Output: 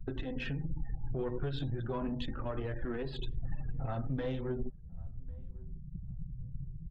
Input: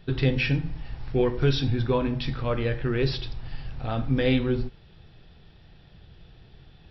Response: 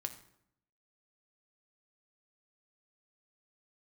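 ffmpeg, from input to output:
-filter_complex "[0:a]lowpass=2900,afftfilt=real='re*gte(hypot(re,im),0.0112)':imag='im*gte(hypot(re,im),0.0112)':win_size=1024:overlap=0.75,equalizer=f=2300:w=5.2:g=-13,acompressor=threshold=0.00794:ratio=3,alimiter=level_in=3.76:limit=0.0631:level=0:latency=1:release=165,volume=0.266,acrossover=split=110|320[s0][s1][s2];[s0]acompressor=threshold=0.0355:ratio=4[s3];[s1]acompressor=threshold=0.0126:ratio=4[s4];[s2]acompressor=threshold=0.02:ratio=4[s5];[s3][s4][s5]amix=inputs=3:normalize=0,flanger=delay=2.6:depth=5.1:regen=-30:speed=0.38:shape=triangular,aeval=exprs='(tanh(100*val(0)+0.45)-tanh(0.45))/100':c=same,asplit=2[s6][s7];[s7]adelay=1097,lowpass=f=900:p=1,volume=0.0631,asplit=2[s8][s9];[s9]adelay=1097,lowpass=f=900:p=1,volume=0.18[s10];[s6][s8][s10]amix=inputs=3:normalize=0,volume=5.31"

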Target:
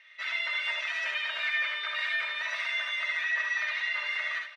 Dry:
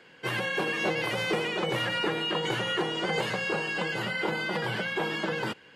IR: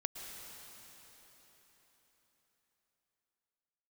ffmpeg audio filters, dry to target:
-filter_complex "[0:a]lowpass=3100,aecho=1:1:4.1:0.76,asetrate=55566,aresample=44100,highpass=f=1800:t=q:w=2.8,aecho=1:1:65|77:0.473|0.501,asplit=2[s0][s1];[1:a]atrim=start_sample=2205,asetrate=25578,aresample=44100[s2];[s1][s2]afir=irnorm=-1:irlink=0,volume=0.251[s3];[s0][s3]amix=inputs=2:normalize=0,volume=0.355"

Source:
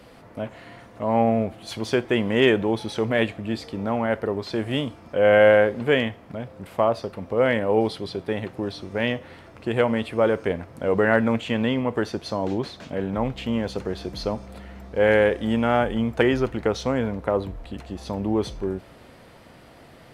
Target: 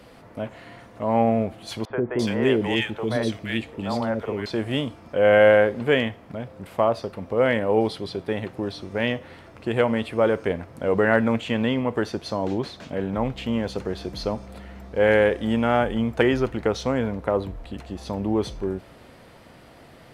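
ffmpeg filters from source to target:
-filter_complex "[0:a]asettb=1/sr,asplit=3[s0][s1][s2];[s0]atrim=end=1.854[s3];[s1]atrim=start=1.85:end=4.46,asetpts=PTS-STARTPTS,afade=t=in:d=0.004:c=qsin,afade=t=out:st=2.606:d=0.004:c=qsin,acrossover=split=490|1700[s4][s5][s6];[s4]adelay=50[s7];[s6]adelay=340[s8];[s7][s5][s8]amix=inputs=3:normalize=0,atrim=end_sample=115101[s9];[s2]atrim=start=4.456[s10];[s3][s9]acrossfade=d=0.004:c1=hsin:c2=qsin[s11];[s11][s10]acrossfade=d=0.004:c1=qsin:c2=hsin"

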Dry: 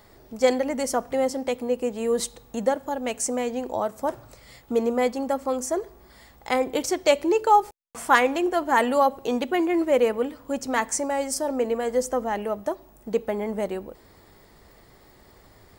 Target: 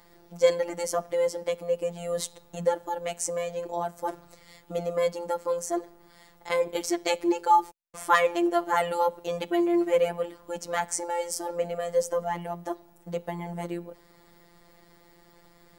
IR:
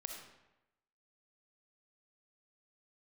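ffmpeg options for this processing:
-af "afftfilt=real='hypot(re,im)*cos(PI*b)':imag='0':win_size=1024:overlap=0.75"

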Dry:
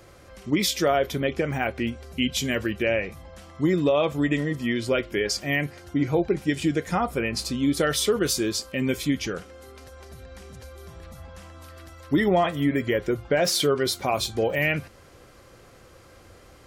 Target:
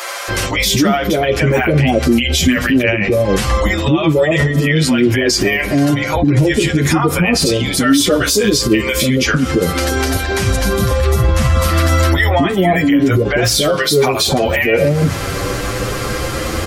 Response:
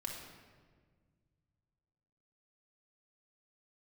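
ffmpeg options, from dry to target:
-filter_complex "[0:a]asettb=1/sr,asplit=3[s0][s1][s2];[s0]atrim=end=10.714[s3];[s1]atrim=start=10.71:end=11.31,asetpts=PTS-STARTPTS,afade=t=in:d=0.004:c=qsin,afade=t=out:st=0.596:d=0.004:c=qsin,equalizer=f=98:w=0.95:g=7.5[s4];[s2]atrim=start=11.306[s5];[s3][s4]acrossfade=d=0.004:c1=hsin:c2=qsin[s6];[s6][s5]acrossfade=d=0.004:c1=qsin:c2=hsin,acompressor=threshold=0.0158:ratio=3,acrossover=split=660[s7][s8];[s7]adelay=280[s9];[s9][s8]amix=inputs=2:normalize=0,asplit=2[s10][s11];[1:a]atrim=start_sample=2205[s12];[s11][s12]afir=irnorm=-1:irlink=0,volume=0.133[s13];[s10][s13]amix=inputs=2:normalize=0,alimiter=level_in=59.6:limit=0.891:release=50:level=0:latency=1,asplit=2[s14][s15];[s15]adelay=8.5,afreqshift=0.4[s16];[s14][s16]amix=inputs=2:normalize=1,volume=0.841"

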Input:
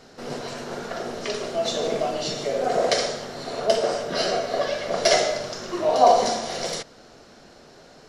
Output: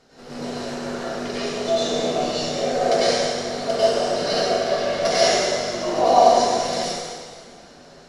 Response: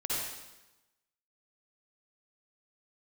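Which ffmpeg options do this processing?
-filter_complex "[1:a]atrim=start_sample=2205,asetrate=24696,aresample=44100[s0];[0:a][s0]afir=irnorm=-1:irlink=0,volume=0.398"

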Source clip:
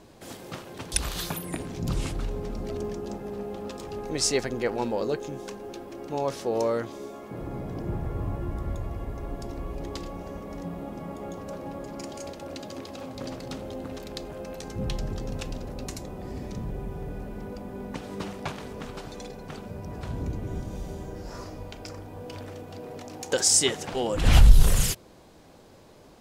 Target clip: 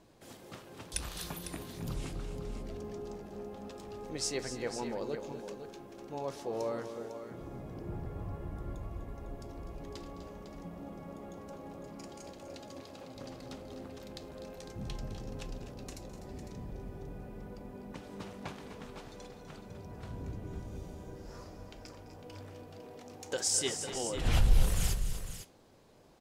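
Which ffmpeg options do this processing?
-filter_complex "[0:a]flanger=delay=5.8:depth=7.6:regen=-79:speed=0.46:shape=triangular,asplit=2[s0][s1];[s1]aecho=0:1:210|249|266|503:0.15|0.266|0.119|0.316[s2];[s0][s2]amix=inputs=2:normalize=0,volume=0.531"

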